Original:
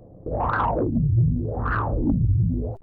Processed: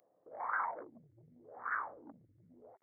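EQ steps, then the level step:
high-pass filter 870 Hz 6 dB per octave
linear-phase brick-wall low-pass 2,300 Hz
first difference
+6.0 dB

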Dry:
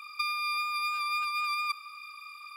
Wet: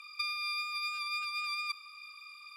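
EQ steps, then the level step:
resonant band-pass 6,600 Hz, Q 0.62
high-shelf EQ 8,100 Hz −9 dB
+2.5 dB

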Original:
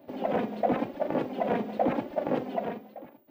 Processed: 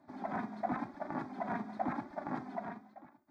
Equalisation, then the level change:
high-frequency loss of the air 83 metres
spectral tilt +1.5 dB per octave
phaser with its sweep stopped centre 1,200 Hz, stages 4
−2.0 dB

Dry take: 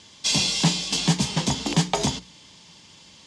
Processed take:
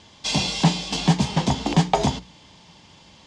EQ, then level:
low-pass filter 2,800 Hz 6 dB per octave
low-shelf EQ 64 Hz +9.5 dB
parametric band 750 Hz +5.5 dB 0.65 octaves
+2.0 dB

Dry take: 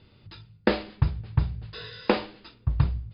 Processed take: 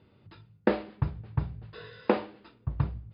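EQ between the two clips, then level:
high-pass filter 170 Hz 6 dB per octave
low-pass filter 1,300 Hz 6 dB per octave
high-frequency loss of the air 75 metres
0.0 dB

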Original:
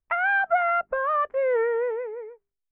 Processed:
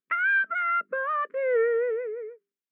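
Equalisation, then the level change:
linear-phase brick-wall high-pass 170 Hz
Butterworth band-reject 780 Hz, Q 0.86
high-shelf EQ 2,800 Hz −11 dB
+4.5 dB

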